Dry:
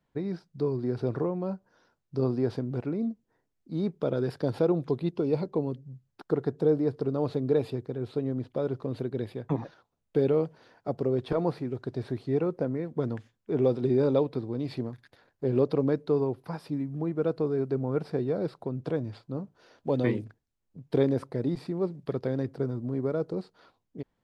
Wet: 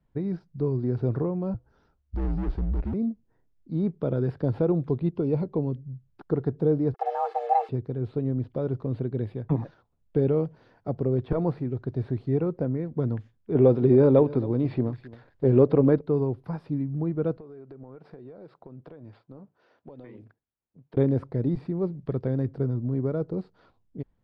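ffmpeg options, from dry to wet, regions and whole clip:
ffmpeg -i in.wav -filter_complex "[0:a]asettb=1/sr,asplit=3[link_01][link_02][link_03];[link_01]atrim=end=1.544[link_04];[link_02]atrim=start=1.54:end=2.94,asetpts=PTS-STARTPTS,afade=type=in:duration=0.004:curve=qsin,afade=type=out:start_time=1.396:duration=0.004:curve=qsin,asoftclip=type=hard:threshold=-31dB,afreqshift=-72[link_05];[link_03]atrim=start=2.936[link_06];[link_04][link_05]acrossfade=duration=0.004:curve1=hsin:curve2=qsin[link_07];[link_07][link_06]acrossfade=duration=0.004:curve1=qsin:curve2=hsin,asettb=1/sr,asplit=3[link_08][link_09][link_10];[link_08]atrim=end=6.944[link_11];[link_09]atrim=start=6.94:end=7.69,asetpts=PTS-STARTPTS,afade=type=in:duration=0.004:curve=qsin,afade=type=out:start_time=0.746:duration=0.004:curve=qsin,acrusher=bits=6:mix=0:aa=0.5,aecho=1:1:2.2:0.63,atrim=end_sample=33075,afreqshift=340[link_12];[link_10]atrim=start=7.686[link_13];[link_11][link_12]acrossfade=duration=0.004:curve1=hsin:curve2=qsin[link_14];[link_14][link_13]acrossfade=duration=0.004:curve1=qsin:curve2=hsin,asettb=1/sr,asplit=3[link_15][link_16][link_17];[link_15]atrim=end=13.554[link_18];[link_16]atrim=start=13.55:end=16.01,asetpts=PTS-STARTPTS,afade=type=in:duration=0.004:curve=qsin,afade=type=out:start_time=2.456:duration=0.004:curve=qsin,bass=frequency=250:gain=-5,treble=frequency=4000:gain=-3,acontrast=68,aecho=1:1:268:0.106,atrim=end_sample=108486[link_19];[link_17]atrim=start=16.006[link_20];[link_18][link_19]acrossfade=duration=0.004:curve1=hsin:curve2=qsin[link_21];[link_21][link_20]acrossfade=duration=0.004:curve1=qsin:curve2=hsin,asettb=1/sr,asplit=3[link_22][link_23][link_24];[link_22]atrim=end=17.374[link_25];[link_23]atrim=start=17.37:end=20.97,asetpts=PTS-STARTPTS,afade=type=in:duration=0.004:curve=qsin,afade=type=out:start_time=3.596:duration=0.004:curve=qsin,highpass=frequency=700:poles=1,acompressor=threshold=-41dB:ratio=12:attack=3.2:release=140:knee=1:detection=peak,highshelf=frequency=3800:gain=-11.5[link_26];[link_24]atrim=start=20.966[link_27];[link_25][link_26]acrossfade=duration=0.004:curve1=hsin:curve2=qsin[link_28];[link_28][link_27]acrossfade=duration=0.004:curve1=qsin:curve2=hsin,acrossover=split=3100[link_29][link_30];[link_30]acompressor=threshold=-60dB:ratio=4:attack=1:release=60[link_31];[link_29][link_31]amix=inputs=2:normalize=0,aemphasis=mode=reproduction:type=bsi,volume=-2dB" out.wav

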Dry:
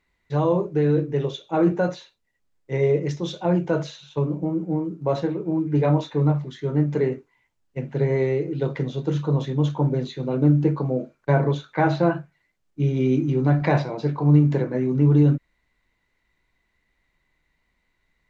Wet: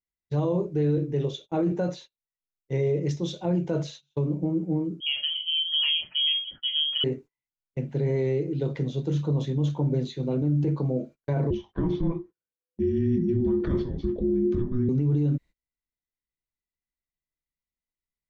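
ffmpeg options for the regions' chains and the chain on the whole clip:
ffmpeg -i in.wav -filter_complex "[0:a]asettb=1/sr,asplit=3[link_01][link_02][link_03];[link_01]atrim=end=5.004[link_04];[link_02]atrim=start=5:end=7.04,asetpts=PTS-STARTPTS,afade=type=in:duration=0.004:curve=qsin,afade=type=out:start_time=2.036:duration=0.004:curve=qsin,bandreject=frequency=1800:width=15,lowpass=frequency=2900:width_type=q:width=0.5098,lowpass=frequency=2900:width_type=q:width=0.6013,lowpass=frequency=2900:width_type=q:width=0.9,lowpass=frequency=2900:width_type=q:width=2.563,afreqshift=-3400[link_05];[link_03]atrim=start=7.036[link_06];[link_04][link_05]acrossfade=duration=0.004:curve1=hsin:curve2=qsin[link_07];[link_07][link_06]acrossfade=duration=0.004:curve1=qsin:curve2=hsin,asettb=1/sr,asplit=3[link_08][link_09][link_10];[link_08]atrim=end=11.504[link_11];[link_09]atrim=start=11.5:end=14.89,asetpts=PTS-STARTPTS,afade=type=in:duration=0.004:curve=qsin,afade=type=out:start_time=3.386:duration=0.004:curve=qsin,lowpass=frequency=2200:poles=1,afreqshift=-500[link_12];[link_10]atrim=start=14.886[link_13];[link_11][link_12]acrossfade=duration=0.004:curve1=hsin:curve2=qsin[link_14];[link_14][link_13]acrossfade=duration=0.004:curve1=qsin:curve2=hsin,agate=range=-25dB:threshold=-40dB:ratio=16:detection=peak,equalizer=frequency=1300:width_type=o:width=2:gain=-9.5,alimiter=limit=-17.5dB:level=0:latency=1:release=35" out.wav

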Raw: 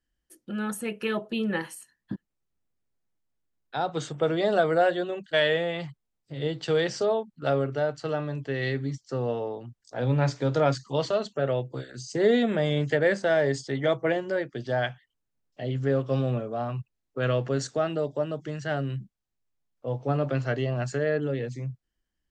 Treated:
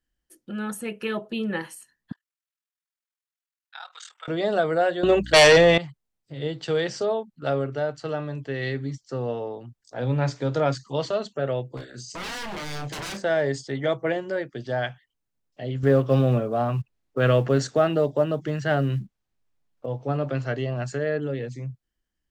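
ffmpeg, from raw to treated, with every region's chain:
ffmpeg -i in.wav -filter_complex "[0:a]asettb=1/sr,asplit=3[link_01][link_02][link_03];[link_01]atrim=end=2.124[link_04];[link_02]atrim=start=2.12:end=4.28,asetpts=PTS-STARTPTS,afade=type=in:duration=0.004:curve=qsin,afade=type=out:start_time=2.156:duration=0.004:curve=qsin,highpass=frequency=1200:width=0.5412,highpass=frequency=1200:width=1.3066,aeval=exprs='val(0)*sin(2*PI*20*n/s)':channel_layout=same[link_05];[link_03]atrim=start=4.276[link_06];[link_04][link_05]acrossfade=duration=0.004:curve1=hsin:curve2=qsin[link_07];[link_07][link_06]acrossfade=duration=0.004:curve1=qsin:curve2=hsin,asettb=1/sr,asplit=3[link_08][link_09][link_10];[link_08]atrim=end=5.034[link_11];[link_09]atrim=start=5.03:end=5.78,asetpts=PTS-STARTPTS,afade=type=in:duration=0.004:curve=qsin,afade=type=out:start_time=0.746:duration=0.004:curve=qsin,aeval=exprs='val(0)+0.00251*(sin(2*PI*60*n/s)+sin(2*PI*2*60*n/s)/2+sin(2*PI*3*60*n/s)/3+sin(2*PI*4*60*n/s)/4+sin(2*PI*5*60*n/s)/5)':channel_layout=same,aeval=exprs='0.335*sin(PI/2*3.55*val(0)/0.335)':channel_layout=same[link_12];[link_10]atrim=start=5.776[link_13];[link_11][link_12]acrossfade=duration=0.004:curve1=hsin:curve2=qsin[link_14];[link_14][link_13]acrossfade=duration=0.004:curve1=qsin:curve2=hsin,asettb=1/sr,asplit=3[link_15][link_16][link_17];[link_15]atrim=end=11.774[link_18];[link_16]atrim=start=11.77:end=13.23,asetpts=PTS-STARTPTS,afade=type=in:duration=0.004:curve=qsin,afade=type=out:start_time=1.456:duration=0.004:curve=qsin,aeval=exprs='0.0355*(abs(mod(val(0)/0.0355+3,4)-2)-1)':channel_layout=same,asplit=2[link_19][link_20];[link_20]adelay=34,volume=-9dB[link_21];[link_19][link_21]amix=inputs=2:normalize=0,atrim=end_sample=64386[link_22];[link_17]atrim=start=13.226[link_23];[link_18][link_22]acrossfade=duration=0.004:curve1=hsin:curve2=qsin[link_24];[link_24][link_23]acrossfade=duration=0.004:curve1=qsin:curve2=hsin,asettb=1/sr,asplit=3[link_25][link_26][link_27];[link_25]atrim=end=15.834[link_28];[link_26]atrim=start=15.83:end=19.86,asetpts=PTS-STARTPTS,afade=type=in:duration=0.004:curve=qsin,afade=type=out:start_time=4.026:duration=0.004:curve=qsin,acontrast=64,acrusher=bits=9:mode=log:mix=0:aa=0.000001,highshelf=frequency=6100:gain=-9[link_29];[link_27]atrim=start=19.856[link_30];[link_28][link_29]acrossfade=duration=0.004:curve1=hsin:curve2=qsin[link_31];[link_31][link_30]acrossfade=duration=0.004:curve1=qsin:curve2=hsin" out.wav

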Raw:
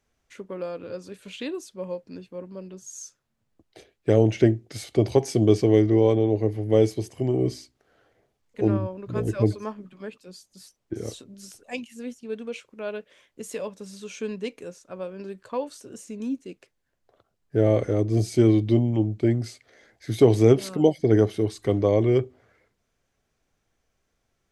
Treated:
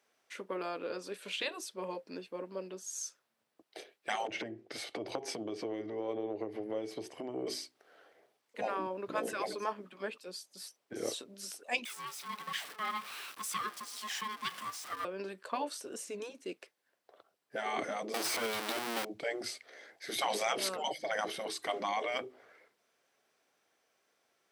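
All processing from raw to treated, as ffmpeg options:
ffmpeg -i in.wav -filter_complex "[0:a]asettb=1/sr,asplit=3[link_01][link_02][link_03];[link_01]atrim=end=4.274[link_04];[link_02]atrim=start=4.27:end=7.47,asetpts=PTS-STARTPTS,afade=type=in:duration=0.004:curve=qsin,afade=type=out:start_time=3.196:duration=0.004:curve=qsin,lowpass=frequency=2700:poles=1,acompressor=threshold=-29dB:ratio=8:attack=3.2:release=140:knee=1:detection=peak[link_05];[link_03]atrim=start=7.466[link_06];[link_04][link_05]acrossfade=duration=0.004:curve1=hsin:curve2=qsin[link_07];[link_07][link_06]acrossfade=duration=0.004:curve1=qsin:curve2=hsin,asettb=1/sr,asplit=3[link_08][link_09][link_10];[link_08]atrim=end=11.854[link_11];[link_09]atrim=start=11.85:end=15.05,asetpts=PTS-STARTPTS,afade=type=in:duration=0.004:curve=qsin,afade=type=out:start_time=3.196:duration=0.004:curve=qsin,aeval=exprs='val(0)+0.5*0.0106*sgn(val(0))':channel_layout=same,highpass=frequency=450:width=0.5412,highpass=frequency=450:width=1.3066,aeval=exprs='val(0)*sin(2*PI*640*n/s)':channel_layout=same[link_12];[link_10]atrim=start=15.046[link_13];[link_11][link_12]acrossfade=duration=0.004:curve1=hsin:curve2=qsin[link_14];[link_14][link_13]acrossfade=duration=0.004:curve1=qsin:curve2=hsin,asettb=1/sr,asplit=3[link_15][link_16][link_17];[link_15]atrim=end=18.144[link_18];[link_16]atrim=start=18.14:end=19.05,asetpts=PTS-STARTPTS,afade=type=in:duration=0.004:curve=qsin,afade=type=out:start_time=0.906:duration=0.004:curve=qsin,aeval=exprs='val(0)+0.5*0.075*sgn(val(0))':channel_layout=same,acrossover=split=790|2200[link_19][link_20][link_21];[link_19]acompressor=threshold=-29dB:ratio=4[link_22];[link_20]acompressor=threshold=-40dB:ratio=4[link_23];[link_21]acompressor=threshold=-38dB:ratio=4[link_24];[link_22][link_23][link_24]amix=inputs=3:normalize=0[link_25];[link_17]atrim=start=19.046[link_26];[link_18][link_25]acrossfade=duration=0.004:curve1=hsin:curve2=qsin[link_27];[link_27][link_26]acrossfade=duration=0.004:curve1=qsin:curve2=hsin,afftfilt=real='re*lt(hypot(re,im),0.2)':imag='im*lt(hypot(re,im),0.2)':win_size=1024:overlap=0.75,highpass=420,equalizer=frequency=6800:width=5.4:gain=-6,volume=3dB" out.wav

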